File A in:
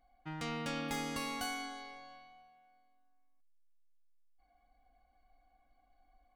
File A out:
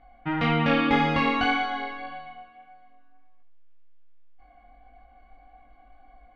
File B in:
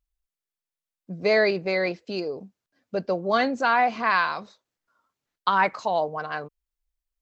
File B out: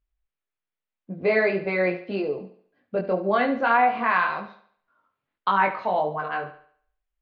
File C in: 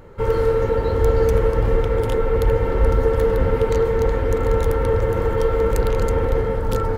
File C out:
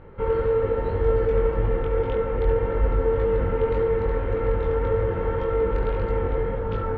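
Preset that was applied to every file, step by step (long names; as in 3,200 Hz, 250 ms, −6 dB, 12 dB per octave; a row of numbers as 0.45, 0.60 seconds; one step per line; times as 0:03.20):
low-pass filter 3,100 Hz 24 dB per octave
in parallel at −3 dB: downward compressor, threshold −26 dBFS
on the sum: chorus effect 1.8 Hz, delay 20 ms, depth 2.4 ms
feedback echo with a high-pass in the loop 71 ms, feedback 43%, high-pass 170 Hz, level −12 dB
loudness normalisation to −24 LKFS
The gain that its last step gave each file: +15.0, +1.0, −4.0 decibels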